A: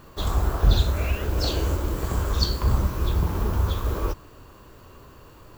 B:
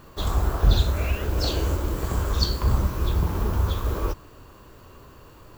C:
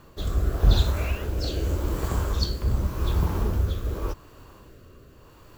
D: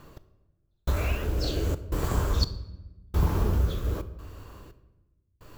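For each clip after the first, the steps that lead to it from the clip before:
no audible change
rotary cabinet horn 0.85 Hz
trance gate "x....xxxxx.xx" 86 bpm -60 dB; simulated room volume 560 m³, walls mixed, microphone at 0.37 m

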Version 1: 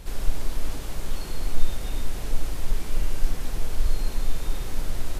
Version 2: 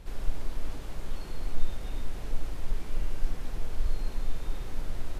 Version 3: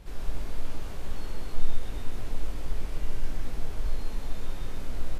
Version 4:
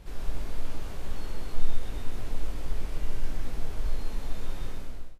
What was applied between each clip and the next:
treble shelf 4.6 kHz -9 dB; trim -5.5 dB
doubling 20 ms -5.5 dB; on a send: delay 126 ms -4 dB; on the sum: trim -1 dB
fade out at the end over 0.54 s

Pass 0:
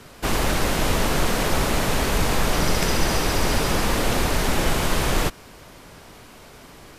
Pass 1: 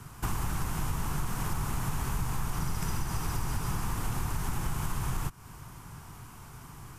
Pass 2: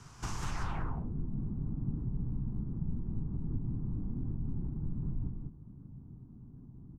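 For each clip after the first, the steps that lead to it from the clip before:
graphic EQ 125/250/500/1000/2000/4000 Hz +8/-6/-10/+4/-7/-11 dB; compression 5:1, threshold -28 dBFS, peak gain reduction 13 dB; peaking EQ 600 Hz -8.5 dB 0.54 oct
low-pass sweep 6 kHz -> 250 Hz, 0.40–0.95 s; on a send: loudspeakers at several distances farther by 13 m -12 dB, 68 m -3 dB; on the sum: warped record 78 rpm, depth 160 cents; trim -6.5 dB

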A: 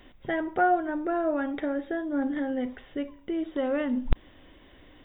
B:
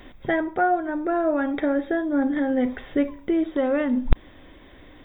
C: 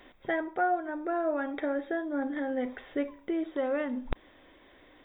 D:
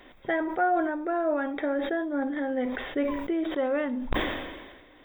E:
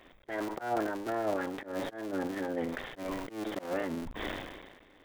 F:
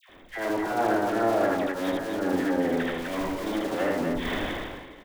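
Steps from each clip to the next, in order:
gain riding within 5 dB 0.5 s; band-stop 2.9 kHz, Q 8.1; trim +5.5 dB
tone controls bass -11 dB, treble -3 dB; trim -6 dB
decay stretcher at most 42 dB/s; trim +2.5 dB
cycle switcher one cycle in 3, muted; slow attack 166 ms; trim -3.5 dB
phase dispersion lows, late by 94 ms, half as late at 1.3 kHz; on a send: loudspeakers at several distances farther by 27 m -1 dB, 86 m -4 dB; on the sum: trim +5 dB

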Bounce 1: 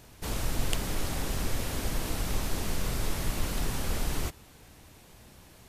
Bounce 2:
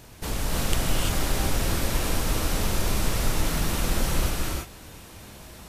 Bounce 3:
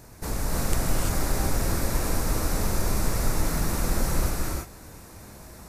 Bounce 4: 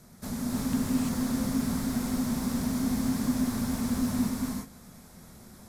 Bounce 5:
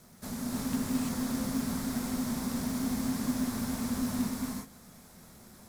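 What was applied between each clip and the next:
in parallel at -2.5 dB: compression, threshold -35 dBFS, peak gain reduction 13.5 dB; on the sum: gated-style reverb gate 370 ms rising, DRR -3 dB
peaking EQ 3.1 kHz -13 dB 0.62 oct
frequency shift -270 Hz; slew-rate limiter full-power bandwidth 170 Hz; trim -5.5 dB
bass shelf 230 Hz -4.5 dB; in parallel at -5 dB: companded quantiser 4-bit; on the sum: trim -5.5 dB

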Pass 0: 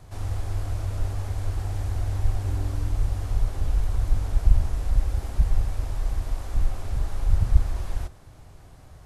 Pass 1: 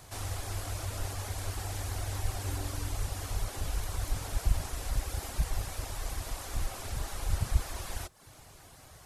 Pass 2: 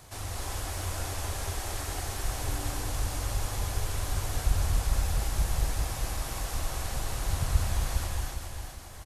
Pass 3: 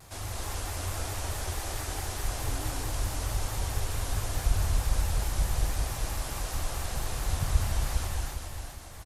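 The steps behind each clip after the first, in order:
reverb removal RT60 0.51 s; tilt EQ +2.5 dB/octave; trim +1.5 dB
feedback delay 406 ms, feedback 42%, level -6 dB; gated-style reverb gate 300 ms rising, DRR 0 dB
vibrato with a chosen wave square 4.6 Hz, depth 100 cents

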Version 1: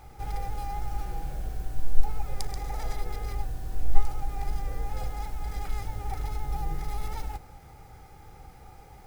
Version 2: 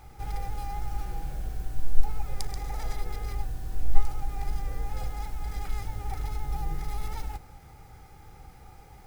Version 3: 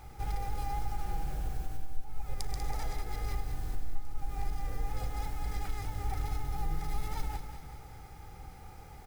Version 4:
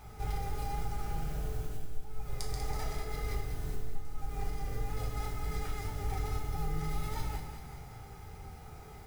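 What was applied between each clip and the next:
peaking EQ 580 Hz -3 dB 1.3 oct
compression 6:1, threshold -27 dBFS, peak gain reduction 18.5 dB; feedback delay 193 ms, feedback 56%, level -9 dB
reverberation RT60 0.60 s, pre-delay 4 ms, DRR 0 dB; trim -1.5 dB

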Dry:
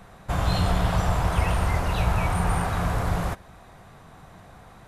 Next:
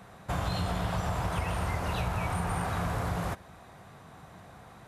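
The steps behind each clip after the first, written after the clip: high-pass 69 Hz; compression, threshold -25 dBFS, peak gain reduction 6 dB; trim -2 dB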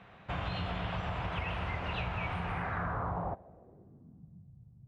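low-pass sweep 2.8 kHz -> 130 Hz, 2.45–4.51 s; trim -5.5 dB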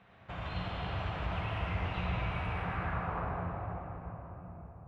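reverberation RT60 4.4 s, pre-delay 50 ms, DRR -4 dB; trim -6.5 dB

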